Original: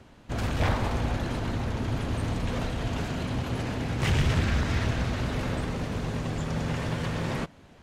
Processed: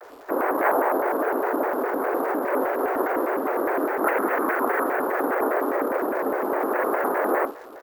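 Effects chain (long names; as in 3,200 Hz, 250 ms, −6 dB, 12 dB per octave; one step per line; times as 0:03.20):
in parallel at +2.5 dB: brickwall limiter −23.5 dBFS, peak gain reduction 10 dB
on the sum: single-sideband voice off tune +190 Hz 310–2,100 Hz
pitch shifter −5.5 semitones
surface crackle 400 per second −48 dBFS
double-tracking delay 48 ms −10 dB
on a send at −19 dB: convolution reverb RT60 4.2 s, pre-delay 47 ms
on the sum: bad sample-rate conversion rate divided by 3×, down filtered, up hold
pitch modulation by a square or saw wave square 4.9 Hz, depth 250 cents
level +6.5 dB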